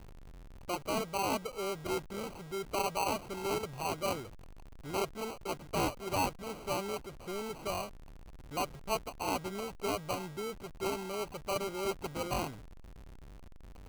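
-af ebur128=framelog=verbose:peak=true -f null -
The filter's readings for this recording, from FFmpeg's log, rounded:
Integrated loudness:
  I:         -36.6 LUFS
  Threshold: -47.3 LUFS
Loudness range:
  LRA:         2.6 LU
  Threshold: -57.0 LUFS
  LRA low:   -38.2 LUFS
  LRA high:  -35.6 LUFS
True peak:
  Peak:      -18.1 dBFS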